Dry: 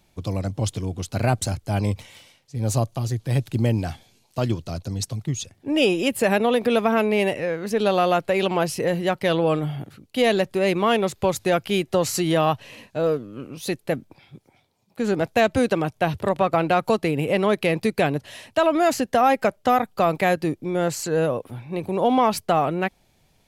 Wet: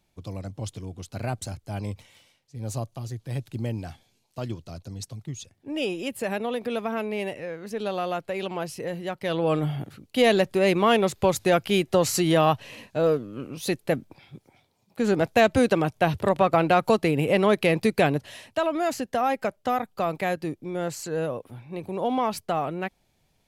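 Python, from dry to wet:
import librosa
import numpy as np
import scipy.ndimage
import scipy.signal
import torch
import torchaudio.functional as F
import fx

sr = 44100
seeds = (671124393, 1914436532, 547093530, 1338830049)

y = fx.gain(x, sr, db=fx.line((9.16, -9.0), (9.63, 0.0), (18.12, 0.0), (18.69, -6.5)))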